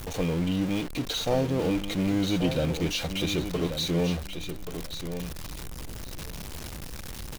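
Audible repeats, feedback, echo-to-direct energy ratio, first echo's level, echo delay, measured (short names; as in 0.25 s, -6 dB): 2, 18%, -9.0 dB, -9.0 dB, 1.132 s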